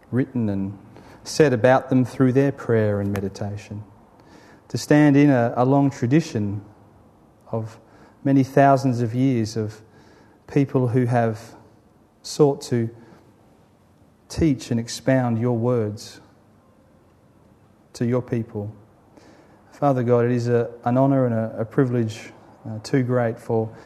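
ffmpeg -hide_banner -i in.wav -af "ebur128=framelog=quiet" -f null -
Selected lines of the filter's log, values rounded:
Integrated loudness:
  I:         -21.1 LUFS
  Threshold: -32.8 LUFS
Loudness range:
  LRA:         7.0 LU
  Threshold: -42.9 LUFS
  LRA low:   -27.3 LUFS
  LRA high:  -20.3 LUFS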